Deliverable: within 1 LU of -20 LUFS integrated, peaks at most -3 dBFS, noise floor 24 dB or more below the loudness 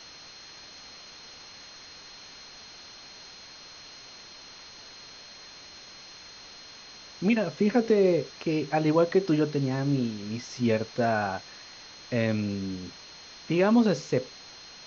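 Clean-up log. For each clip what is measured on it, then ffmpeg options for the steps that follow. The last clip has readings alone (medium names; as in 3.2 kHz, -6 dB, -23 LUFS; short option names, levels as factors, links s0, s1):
steady tone 4.2 kHz; tone level -48 dBFS; noise floor -48 dBFS; noise floor target -51 dBFS; loudness -26.5 LUFS; peak level -11.0 dBFS; loudness target -20.0 LUFS
-> -af "bandreject=f=4200:w=30"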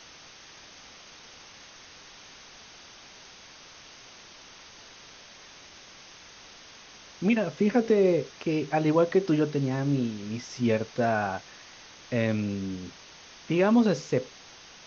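steady tone not found; noise floor -50 dBFS; noise floor target -51 dBFS
-> -af "afftdn=nr=6:nf=-50"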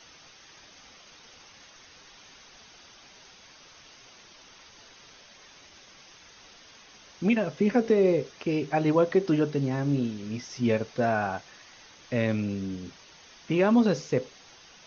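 noise floor -53 dBFS; loudness -26.5 LUFS; peak level -11.5 dBFS; loudness target -20.0 LUFS
-> -af "volume=2.11"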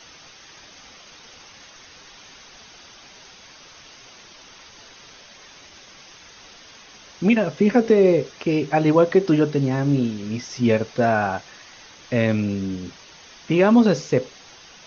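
loudness -20.0 LUFS; peak level -5.0 dBFS; noise floor -47 dBFS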